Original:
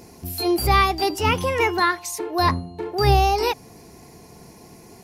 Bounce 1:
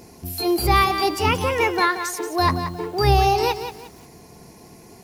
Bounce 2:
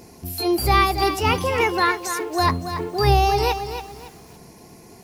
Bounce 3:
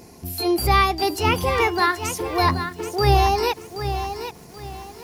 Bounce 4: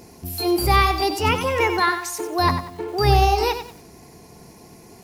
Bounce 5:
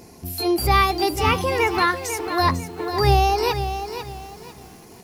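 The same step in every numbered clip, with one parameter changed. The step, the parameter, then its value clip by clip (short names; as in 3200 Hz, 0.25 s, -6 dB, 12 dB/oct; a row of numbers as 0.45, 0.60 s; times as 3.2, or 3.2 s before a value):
lo-fi delay, time: 178, 281, 778, 94, 497 ms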